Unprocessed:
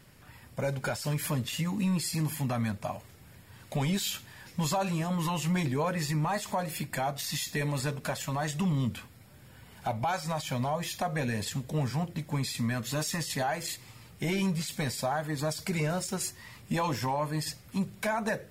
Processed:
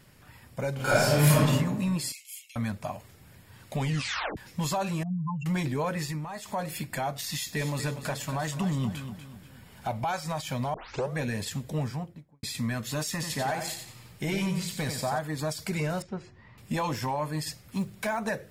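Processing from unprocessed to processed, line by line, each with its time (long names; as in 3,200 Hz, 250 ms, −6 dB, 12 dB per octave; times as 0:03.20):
0:00.75–0:01.40: thrown reverb, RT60 1.2 s, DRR −10.5 dB
0:02.12–0:02.56: Chebyshev high-pass with heavy ripple 2,100 Hz, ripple 6 dB
0:03.84: tape stop 0.53 s
0:05.03–0:05.46: expanding power law on the bin magnitudes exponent 3.9
0:05.99–0:06.61: duck −8.5 dB, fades 0.27 s
0:07.32–0:10.01: repeating echo 241 ms, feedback 39%, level −10 dB
0:10.74: tape start 0.40 s
0:11.71–0:12.43: fade out and dull
0:13.11–0:15.19: repeating echo 91 ms, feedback 33%, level −6.5 dB
0:16.02–0:16.58: head-to-tape spacing loss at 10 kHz 41 dB
0:17.75–0:18.19: floating-point word with a short mantissa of 4 bits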